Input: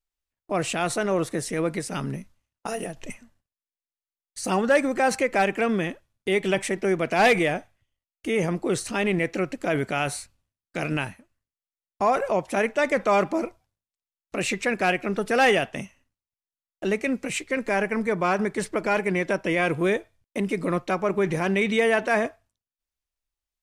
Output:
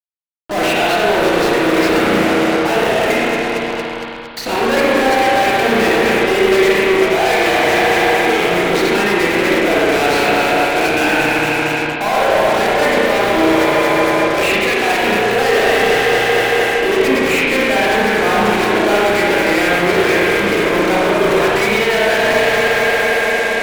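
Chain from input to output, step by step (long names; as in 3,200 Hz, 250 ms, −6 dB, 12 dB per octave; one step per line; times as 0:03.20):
loudspeaker in its box 400–3,900 Hz, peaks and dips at 570 Hz −5 dB, 1,200 Hz −9 dB, 3,100 Hz −5 dB
delay that swaps between a low-pass and a high-pass 115 ms, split 1,700 Hz, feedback 85%, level −11 dB
reversed playback
downward compressor 16 to 1, threshold −33 dBFS, peak gain reduction 18 dB
reversed playback
fuzz pedal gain 54 dB, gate −53 dBFS
spring reverb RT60 1.8 s, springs 34/59 ms, chirp 30 ms, DRR −5 dB
level −5 dB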